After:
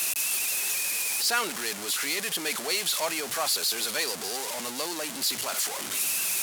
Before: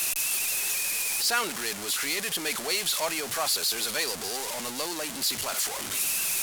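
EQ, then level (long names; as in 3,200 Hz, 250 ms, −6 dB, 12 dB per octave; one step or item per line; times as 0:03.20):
high-pass filter 140 Hz 12 dB per octave
0.0 dB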